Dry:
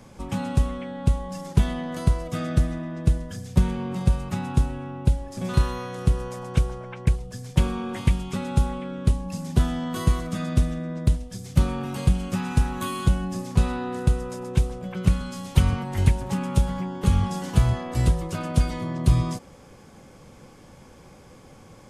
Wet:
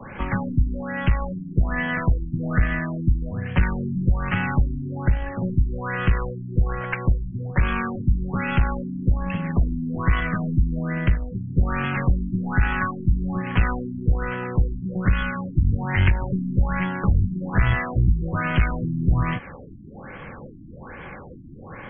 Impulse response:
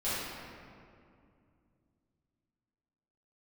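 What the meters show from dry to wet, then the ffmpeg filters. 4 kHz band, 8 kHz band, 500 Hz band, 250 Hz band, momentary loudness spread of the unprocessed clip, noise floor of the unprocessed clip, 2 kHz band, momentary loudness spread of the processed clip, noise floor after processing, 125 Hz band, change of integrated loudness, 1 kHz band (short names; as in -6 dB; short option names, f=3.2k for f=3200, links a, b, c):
-3.0 dB, under -40 dB, -0.5 dB, +1.5 dB, 5 LU, -49 dBFS, +11.5 dB, 8 LU, -40 dBFS, +0.5 dB, +1.5 dB, +3.5 dB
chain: -filter_complex "[0:a]equalizer=f=1.8k:t=o:w=1.2:g=14,acrossover=split=82|180|1300[a][b][c][d];[a]acompressor=threshold=-23dB:ratio=4[e];[b]acompressor=threshold=-31dB:ratio=4[f];[c]acompressor=threshold=-40dB:ratio=4[g];[d]acompressor=threshold=-31dB:ratio=4[h];[e][f][g][h]amix=inputs=4:normalize=0,asplit=2[i][j];[j]acrusher=bits=2:mode=log:mix=0:aa=0.000001,volume=-8.5dB[k];[i][k]amix=inputs=2:normalize=0,aeval=exprs='(tanh(7.94*val(0)+0.45)-tanh(0.45))/7.94':c=same,afftfilt=real='re*lt(b*sr/1024,330*pow(3400/330,0.5+0.5*sin(2*PI*1.2*pts/sr)))':imag='im*lt(b*sr/1024,330*pow(3400/330,0.5+0.5*sin(2*PI*1.2*pts/sr)))':win_size=1024:overlap=0.75,volume=7dB"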